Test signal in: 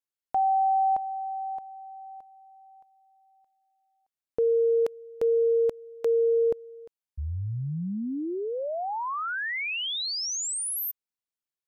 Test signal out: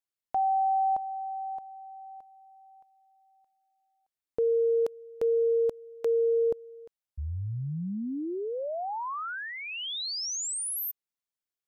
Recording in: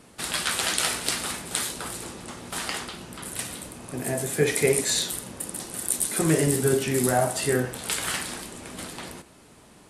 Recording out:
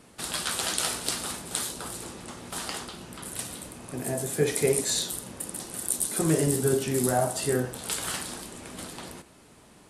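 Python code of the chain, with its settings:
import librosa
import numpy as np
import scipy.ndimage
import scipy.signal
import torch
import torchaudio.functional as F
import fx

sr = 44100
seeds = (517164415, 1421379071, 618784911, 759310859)

y = fx.dynamic_eq(x, sr, hz=2100.0, q=1.5, threshold_db=-46.0, ratio=4.0, max_db=-6)
y = y * librosa.db_to_amplitude(-2.0)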